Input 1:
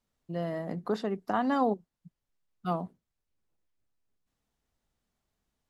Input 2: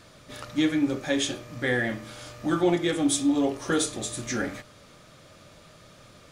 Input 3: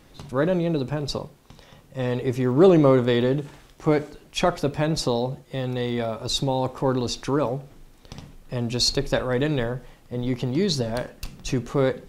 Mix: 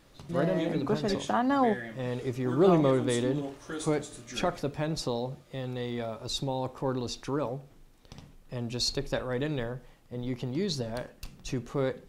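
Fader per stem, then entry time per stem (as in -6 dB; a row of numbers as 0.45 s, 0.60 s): +1.5 dB, -12.5 dB, -8.0 dB; 0.00 s, 0.00 s, 0.00 s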